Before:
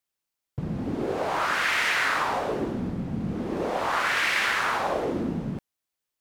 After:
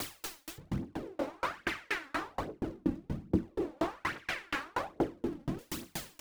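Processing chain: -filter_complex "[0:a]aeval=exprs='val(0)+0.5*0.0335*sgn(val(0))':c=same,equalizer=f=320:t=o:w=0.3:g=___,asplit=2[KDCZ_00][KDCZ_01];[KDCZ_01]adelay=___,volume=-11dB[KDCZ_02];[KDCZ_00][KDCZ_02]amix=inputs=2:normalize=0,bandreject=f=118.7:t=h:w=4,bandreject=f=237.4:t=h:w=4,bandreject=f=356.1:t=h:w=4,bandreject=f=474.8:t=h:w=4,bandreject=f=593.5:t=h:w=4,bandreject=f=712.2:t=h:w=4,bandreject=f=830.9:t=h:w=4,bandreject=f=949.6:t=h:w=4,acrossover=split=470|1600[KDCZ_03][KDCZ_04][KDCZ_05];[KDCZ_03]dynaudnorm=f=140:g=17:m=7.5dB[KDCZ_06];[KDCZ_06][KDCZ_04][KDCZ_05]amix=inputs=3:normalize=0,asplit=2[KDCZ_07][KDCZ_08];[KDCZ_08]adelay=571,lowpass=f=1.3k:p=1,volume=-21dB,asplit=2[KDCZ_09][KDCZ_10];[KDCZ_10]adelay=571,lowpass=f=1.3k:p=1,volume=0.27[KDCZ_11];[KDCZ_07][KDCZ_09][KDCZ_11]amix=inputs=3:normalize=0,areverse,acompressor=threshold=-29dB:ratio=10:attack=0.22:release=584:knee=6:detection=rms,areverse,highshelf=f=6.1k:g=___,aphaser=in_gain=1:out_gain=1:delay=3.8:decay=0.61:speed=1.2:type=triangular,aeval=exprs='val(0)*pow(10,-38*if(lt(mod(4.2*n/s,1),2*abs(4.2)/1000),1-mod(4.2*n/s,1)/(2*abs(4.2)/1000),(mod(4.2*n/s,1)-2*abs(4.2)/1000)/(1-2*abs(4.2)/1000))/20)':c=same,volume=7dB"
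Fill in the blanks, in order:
7.5, 21, -7.5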